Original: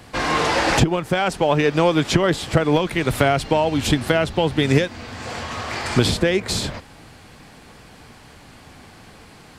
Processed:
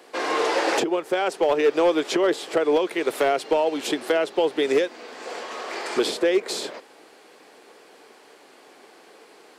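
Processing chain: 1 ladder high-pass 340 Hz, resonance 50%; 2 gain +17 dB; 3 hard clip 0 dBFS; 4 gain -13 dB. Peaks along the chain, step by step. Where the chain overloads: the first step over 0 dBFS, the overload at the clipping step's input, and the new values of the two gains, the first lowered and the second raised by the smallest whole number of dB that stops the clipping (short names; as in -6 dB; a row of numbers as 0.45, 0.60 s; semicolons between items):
-11.0, +6.0, 0.0, -13.0 dBFS; step 2, 6.0 dB; step 2 +11 dB, step 4 -7 dB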